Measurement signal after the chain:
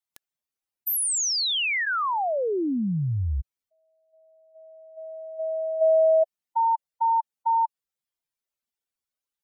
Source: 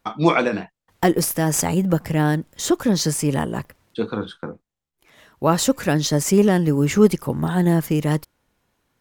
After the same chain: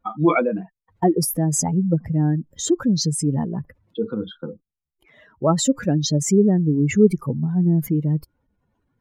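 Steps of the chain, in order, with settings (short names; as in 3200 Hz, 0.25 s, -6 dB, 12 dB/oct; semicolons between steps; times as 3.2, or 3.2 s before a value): spectral contrast raised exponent 2.2; notch 1700 Hz, Q 30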